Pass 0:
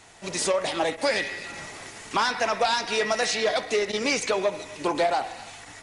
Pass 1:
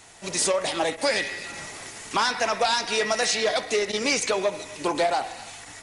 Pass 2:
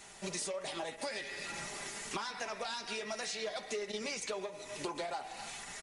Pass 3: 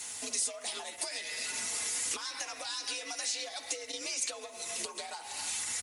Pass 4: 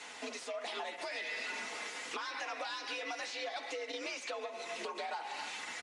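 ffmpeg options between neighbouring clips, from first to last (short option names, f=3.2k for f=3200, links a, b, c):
-af "highshelf=f=6.2k:g=7.5"
-af "aecho=1:1:5:0.35,acompressor=threshold=-33dB:ratio=6,flanger=delay=5:depth=3.2:regen=-58:speed=0.52:shape=sinusoidal"
-af "acompressor=threshold=-42dB:ratio=6,crystalizer=i=5:c=0,afreqshift=68"
-af "asoftclip=type=tanh:threshold=-32dB,highpass=260,lowpass=2.6k,volume=5dB"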